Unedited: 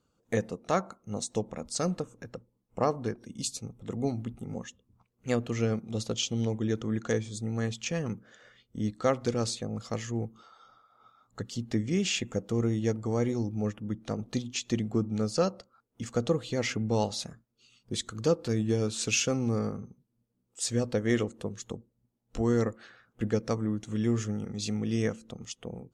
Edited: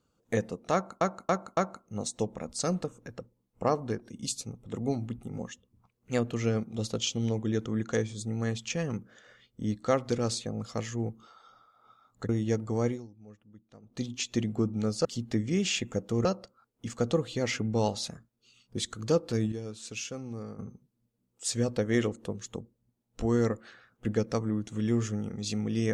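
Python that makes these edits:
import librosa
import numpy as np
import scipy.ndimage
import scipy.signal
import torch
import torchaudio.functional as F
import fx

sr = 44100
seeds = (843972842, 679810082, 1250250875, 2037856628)

y = fx.edit(x, sr, fx.repeat(start_s=0.73, length_s=0.28, count=4),
    fx.move(start_s=11.45, length_s=1.2, to_s=15.41),
    fx.fade_down_up(start_s=13.23, length_s=1.18, db=-20.5, fade_s=0.24, curve='qua'),
    fx.clip_gain(start_s=18.68, length_s=1.07, db=-10.5), tone=tone)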